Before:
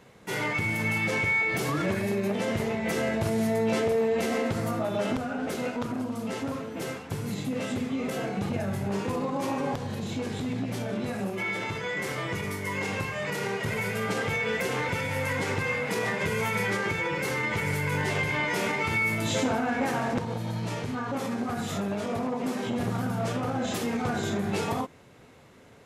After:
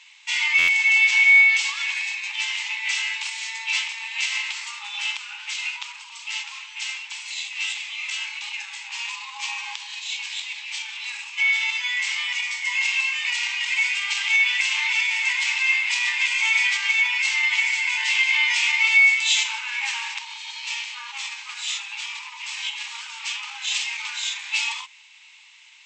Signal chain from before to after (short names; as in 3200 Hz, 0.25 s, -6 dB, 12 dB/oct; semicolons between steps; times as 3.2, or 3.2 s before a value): brick-wall FIR band-pass 810–8200 Hz; resonant high shelf 1900 Hz +10 dB, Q 3; stuck buffer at 0.58, samples 512, times 8